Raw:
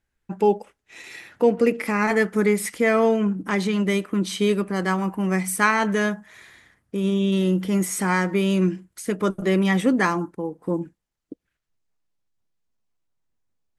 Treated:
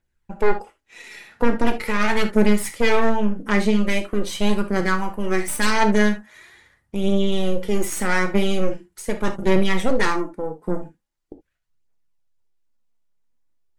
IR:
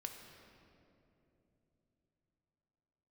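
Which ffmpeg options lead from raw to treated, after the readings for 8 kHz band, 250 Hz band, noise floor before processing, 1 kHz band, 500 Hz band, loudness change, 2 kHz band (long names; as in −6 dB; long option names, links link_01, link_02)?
0.0 dB, −0.5 dB, −80 dBFS, +1.0 dB, 0.0 dB, 0.0 dB, +1.0 dB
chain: -filter_complex "[0:a]aeval=exprs='0.596*(cos(1*acos(clip(val(0)/0.596,-1,1)))-cos(1*PI/2))+0.188*(cos(5*acos(clip(val(0)/0.596,-1,1)))-cos(5*PI/2))+0.299*(cos(6*acos(clip(val(0)/0.596,-1,1)))-cos(6*PI/2))':channel_layout=same,aphaser=in_gain=1:out_gain=1:delay=5:decay=0.42:speed=0.42:type=triangular[link_01];[1:a]atrim=start_sample=2205,afade=type=out:start_time=0.2:duration=0.01,atrim=end_sample=9261,asetrate=83790,aresample=44100[link_02];[link_01][link_02]afir=irnorm=-1:irlink=0"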